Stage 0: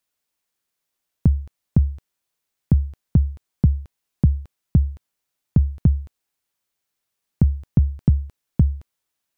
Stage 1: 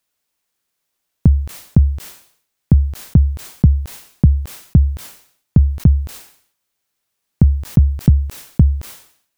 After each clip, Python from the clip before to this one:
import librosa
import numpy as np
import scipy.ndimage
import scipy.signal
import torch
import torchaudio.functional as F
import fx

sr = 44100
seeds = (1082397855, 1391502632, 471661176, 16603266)

y = fx.sustainer(x, sr, db_per_s=100.0)
y = y * librosa.db_to_amplitude(5.0)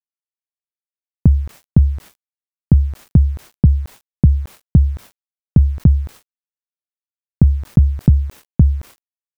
y = fx.high_shelf(x, sr, hz=2800.0, db=-11.5)
y = np.where(np.abs(y) >= 10.0 ** (-40.5 / 20.0), y, 0.0)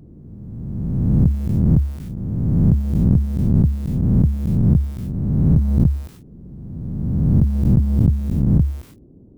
y = fx.spec_swells(x, sr, rise_s=2.12)
y = fx.dmg_noise_band(y, sr, seeds[0], low_hz=31.0, high_hz=330.0, level_db=-39.0)
y = y * librosa.db_to_amplitude(-7.5)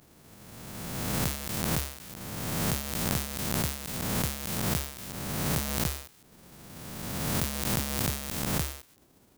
y = fx.envelope_flatten(x, sr, power=0.3)
y = y * librosa.db_to_amplitude(-15.0)